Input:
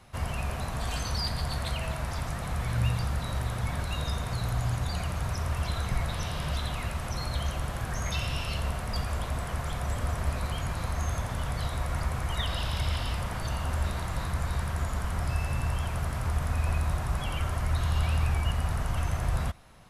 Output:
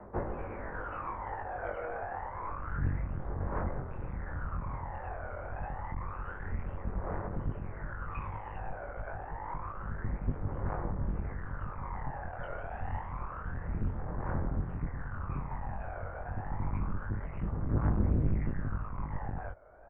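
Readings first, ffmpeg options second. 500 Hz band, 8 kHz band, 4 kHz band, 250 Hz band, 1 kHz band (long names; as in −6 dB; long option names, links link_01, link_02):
−2.5 dB, below −40 dB, below −35 dB, −1.5 dB, −3.5 dB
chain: -af "asubboost=boost=7:cutoff=110,aphaser=in_gain=1:out_gain=1:delay=1.3:decay=0.71:speed=0.28:type=triangular,aresample=8000,asoftclip=type=tanh:threshold=-7.5dB,aresample=44100,adynamicsmooth=sensitivity=4:basefreq=1200,alimiter=limit=-14.5dB:level=0:latency=1:release=464,areverse,acompressor=mode=upward:threshold=-29dB:ratio=2.5,areverse,highpass=frequency=210:width_type=q:width=0.5412,highpass=frequency=210:width_type=q:width=1.307,lowpass=frequency=2000:width_type=q:width=0.5176,lowpass=frequency=2000:width_type=q:width=0.7071,lowpass=frequency=2000:width_type=q:width=1.932,afreqshift=-170,flanger=delay=19.5:depth=4:speed=0.11,volume=7dB"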